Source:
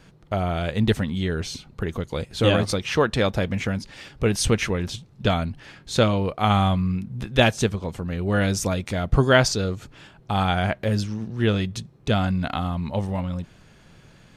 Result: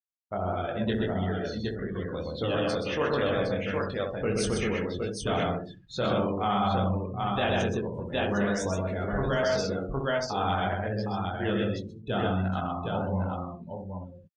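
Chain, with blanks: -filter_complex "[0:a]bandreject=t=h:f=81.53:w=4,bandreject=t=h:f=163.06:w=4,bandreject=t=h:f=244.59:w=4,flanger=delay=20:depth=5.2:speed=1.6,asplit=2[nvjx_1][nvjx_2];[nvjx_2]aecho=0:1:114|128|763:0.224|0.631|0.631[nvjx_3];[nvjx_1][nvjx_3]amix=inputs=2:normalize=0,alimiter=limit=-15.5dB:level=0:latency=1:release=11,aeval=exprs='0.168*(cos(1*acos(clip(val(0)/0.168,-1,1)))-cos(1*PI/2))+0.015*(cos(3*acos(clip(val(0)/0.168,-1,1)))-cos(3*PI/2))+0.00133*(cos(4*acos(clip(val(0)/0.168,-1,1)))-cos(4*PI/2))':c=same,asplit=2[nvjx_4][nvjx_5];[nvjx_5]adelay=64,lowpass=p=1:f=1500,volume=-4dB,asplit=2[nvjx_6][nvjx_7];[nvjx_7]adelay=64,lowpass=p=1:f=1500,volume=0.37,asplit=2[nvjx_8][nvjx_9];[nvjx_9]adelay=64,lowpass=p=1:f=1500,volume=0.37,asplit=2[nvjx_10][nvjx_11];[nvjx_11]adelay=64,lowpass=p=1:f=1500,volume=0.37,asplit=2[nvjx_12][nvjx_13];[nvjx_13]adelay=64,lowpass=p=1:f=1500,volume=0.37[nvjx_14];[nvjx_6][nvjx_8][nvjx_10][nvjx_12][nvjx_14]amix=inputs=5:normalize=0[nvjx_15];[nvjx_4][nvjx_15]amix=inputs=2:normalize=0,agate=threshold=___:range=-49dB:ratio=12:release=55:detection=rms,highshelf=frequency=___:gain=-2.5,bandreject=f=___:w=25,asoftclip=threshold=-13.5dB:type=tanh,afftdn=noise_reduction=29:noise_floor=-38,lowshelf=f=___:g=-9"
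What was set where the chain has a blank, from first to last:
-47dB, 2700, 2300, 180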